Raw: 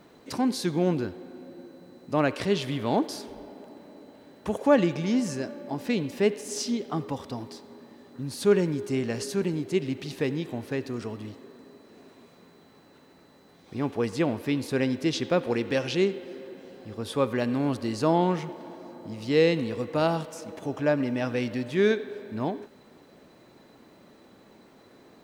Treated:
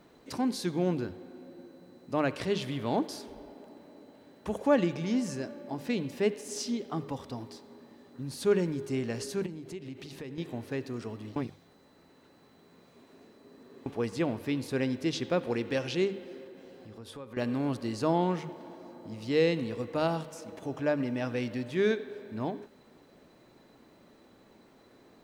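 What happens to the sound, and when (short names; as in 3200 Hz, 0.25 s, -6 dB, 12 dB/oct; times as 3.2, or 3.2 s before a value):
9.46–10.38 compressor 3:1, threshold -36 dBFS
11.36–13.86 reverse
16.44–17.37 compressor 3:1, threshold -40 dBFS
whole clip: low shelf 66 Hz +7 dB; notches 50/100/150/200 Hz; gain -4.5 dB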